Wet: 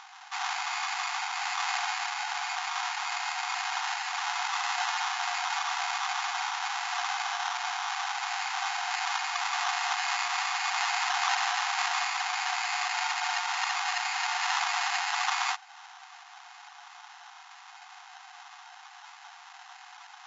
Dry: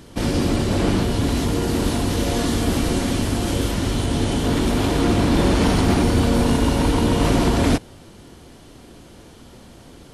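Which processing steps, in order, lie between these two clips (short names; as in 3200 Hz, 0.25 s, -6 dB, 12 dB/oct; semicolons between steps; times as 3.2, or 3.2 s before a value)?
speed mistake 15 ips tape played at 7.5 ips; in parallel at +0.5 dB: compressor, threshold -30 dBFS, peak gain reduction 16 dB; on the sum: sample-and-hold 19×; FFT band-pass 700–7400 Hz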